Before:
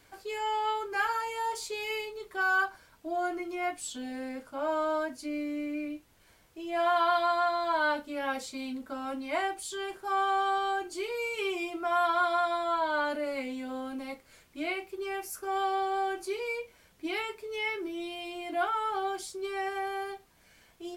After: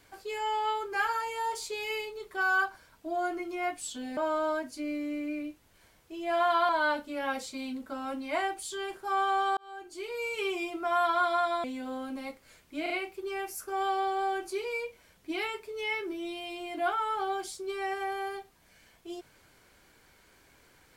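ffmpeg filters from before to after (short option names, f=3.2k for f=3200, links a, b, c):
-filter_complex "[0:a]asplit=7[a][b][c][d][e][f][g];[a]atrim=end=4.172[h];[b]atrim=start=4.628:end=7.152[i];[c]atrim=start=7.688:end=10.57,asetpts=PTS-STARTPTS,afade=t=out:st=2.878:d=0.004:c=hsin[j];[d]atrim=start=10.57:end=12.642,asetpts=PTS-STARTPTS,afade=t=in:d=0.74[k];[e]atrim=start=13.468:end=14.692[l];[f]atrim=start=14.648:end=14.692[m];[g]atrim=start=14.648[n];[h][i]acrossfade=d=0.004:c1=hsin:c2=hsin[o];[j][k]concat=n=2:v=0:a=1[p];[o][p]acrossfade=d=0.004:c1=hsin:c2=hsin[q];[q][l]acrossfade=d=0.004:c1=hsin:c2=hsin[r];[r][m]acrossfade=d=0.004:c1=hsin:c2=hsin[s];[s][n]acrossfade=d=0.004:c1=hsin:c2=hsin"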